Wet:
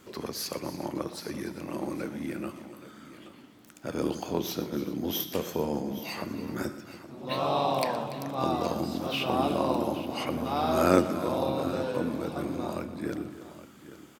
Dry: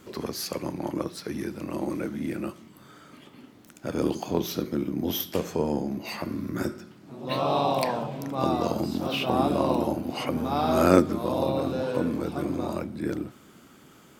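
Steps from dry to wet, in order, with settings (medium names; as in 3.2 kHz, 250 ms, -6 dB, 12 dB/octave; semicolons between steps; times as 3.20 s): bass shelf 450 Hz -3.5 dB; multi-tap echo 120/288/389/822 ms -16/-15/-19.5/-15 dB; trim -1.5 dB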